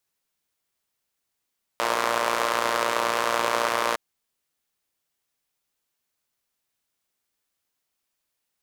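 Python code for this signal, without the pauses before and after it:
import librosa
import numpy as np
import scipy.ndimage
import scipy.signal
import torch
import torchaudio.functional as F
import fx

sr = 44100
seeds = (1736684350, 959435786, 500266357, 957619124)

y = fx.engine_four(sr, seeds[0], length_s=2.16, rpm=3500, resonances_hz=(590.0, 1000.0))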